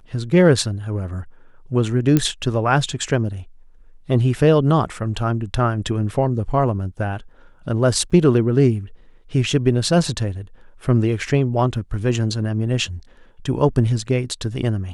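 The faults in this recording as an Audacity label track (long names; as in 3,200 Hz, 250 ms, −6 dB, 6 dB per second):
2.170000	2.170000	click −4 dBFS
8.100000	8.110000	drop-out 6 ms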